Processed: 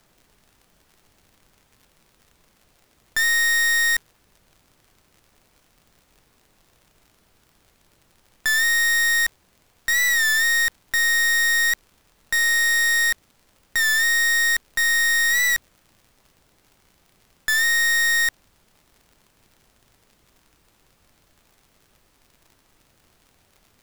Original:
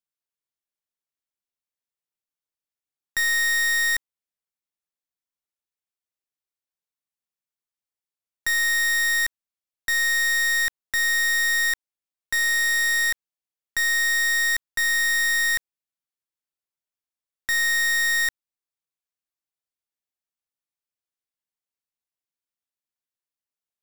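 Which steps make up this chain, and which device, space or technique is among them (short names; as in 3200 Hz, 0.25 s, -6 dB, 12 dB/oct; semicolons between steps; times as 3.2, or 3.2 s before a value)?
warped LP (record warp 33 1/3 rpm, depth 100 cents; crackle; pink noise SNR 37 dB); gain +2.5 dB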